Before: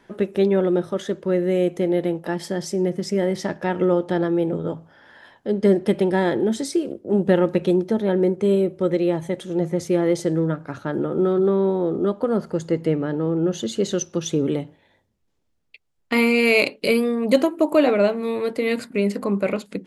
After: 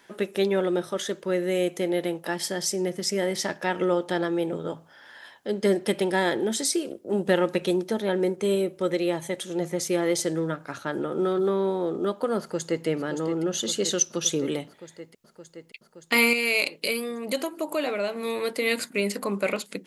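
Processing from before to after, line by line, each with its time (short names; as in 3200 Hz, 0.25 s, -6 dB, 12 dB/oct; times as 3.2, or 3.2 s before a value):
12.39–12.86 echo throw 0.57 s, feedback 80%, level -9 dB
16.33–18.16 compressor 1.5:1, threshold -32 dBFS
whole clip: tilt +3 dB/oct; gain -1 dB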